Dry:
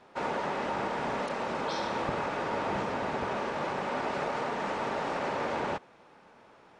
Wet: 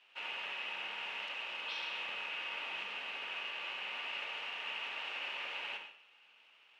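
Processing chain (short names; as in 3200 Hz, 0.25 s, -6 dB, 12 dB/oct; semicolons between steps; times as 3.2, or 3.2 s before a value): in parallel at -8 dB: companded quantiser 4-bit; on the sum: band-pass 2800 Hz, Q 7.9; reverb RT60 0.60 s, pre-delay 53 ms, DRR 4.5 dB; gain +6 dB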